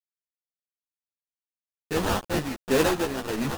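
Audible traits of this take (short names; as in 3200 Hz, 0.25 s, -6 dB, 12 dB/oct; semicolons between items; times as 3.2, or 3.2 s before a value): aliases and images of a low sample rate 2200 Hz, jitter 20%; tremolo triangle 1.5 Hz, depth 70%; a quantiser's noise floor 6-bit, dither none; a shimmering, thickened sound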